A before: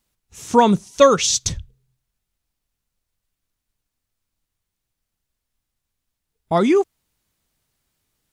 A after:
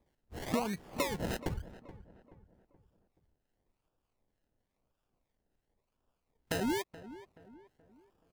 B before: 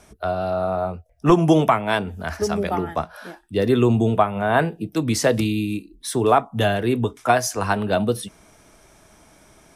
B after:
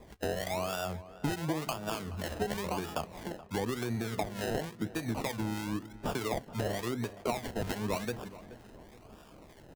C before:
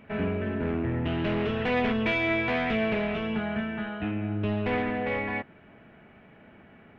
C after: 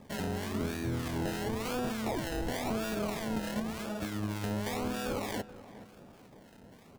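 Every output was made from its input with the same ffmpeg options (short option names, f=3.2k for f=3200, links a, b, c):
-filter_complex "[0:a]acompressor=threshold=-28dB:ratio=16,acrusher=samples=30:mix=1:aa=0.000001:lfo=1:lforange=18:lforate=0.95,acrossover=split=1100[a][b];[a]aeval=exprs='val(0)*(1-0.5/2+0.5/2*cos(2*PI*3.3*n/s))':c=same[c];[b]aeval=exprs='val(0)*(1-0.5/2-0.5/2*cos(2*PI*3.3*n/s))':c=same[d];[c][d]amix=inputs=2:normalize=0,asplit=2[e][f];[f]adelay=427,lowpass=f=1.7k:p=1,volume=-15.5dB,asplit=2[g][h];[h]adelay=427,lowpass=f=1.7k:p=1,volume=0.43,asplit=2[i][j];[j]adelay=427,lowpass=f=1.7k:p=1,volume=0.43,asplit=2[k][l];[l]adelay=427,lowpass=f=1.7k:p=1,volume=0.43[m];[e][g][i][k][m]amix=inputs=5:normalize=0"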